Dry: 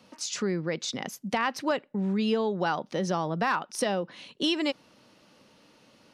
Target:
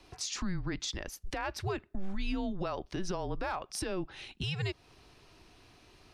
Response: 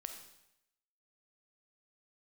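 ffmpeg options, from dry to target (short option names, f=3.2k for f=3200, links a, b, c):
-af "afreqshift=-190,alimiter=level_in=1.5dB:limit=-24dB:level=0:latency=1:release=222,volume=-1.5dB"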